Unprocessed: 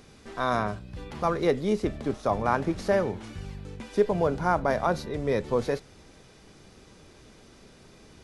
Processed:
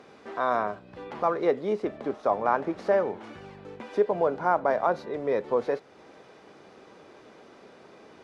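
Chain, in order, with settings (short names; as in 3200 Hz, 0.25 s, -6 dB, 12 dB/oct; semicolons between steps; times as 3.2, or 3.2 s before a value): LPF 3800 Hz 6 dB/oct; bell 790 Hz +3 dB 2.6 oct; in parallel at +0.5 dB: compressor, threshold -37 dBFS, peak gain reduction 21 dB; on the sum: Bessel high-pass 590 Hz, order 2; tilt -3 dB/oct; gain -1.5 dB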